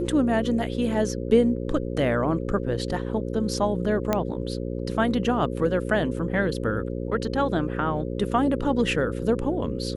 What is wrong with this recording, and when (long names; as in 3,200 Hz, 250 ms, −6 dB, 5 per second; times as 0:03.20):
mains buzz 60 Hz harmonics 9 −30 dBFS
0:04.13: click −9 dBFS